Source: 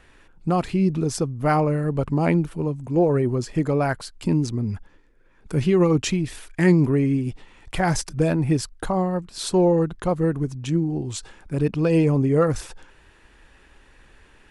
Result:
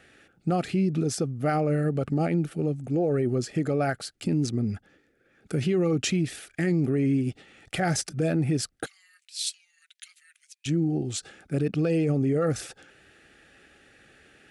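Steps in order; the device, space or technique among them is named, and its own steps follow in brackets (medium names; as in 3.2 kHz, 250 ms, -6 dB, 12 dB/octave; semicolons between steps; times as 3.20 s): PA system with an anti-feedback notch (high-pass 120 Hz 12 dB/octave; Butterworth band-stop 990 Hz, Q 2.8; peak limiter -17 dBFS, peak gain reduction 10 dB); 8.86–10.66 s: steep high-pass 2.2 kHz 36 dB/octave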